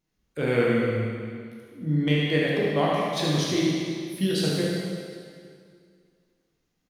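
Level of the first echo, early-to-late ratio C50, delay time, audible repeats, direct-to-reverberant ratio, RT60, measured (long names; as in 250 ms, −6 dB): −5.0 dB, −2.5 dB, 74 ms, 1, −6.0 dB, 2.1 s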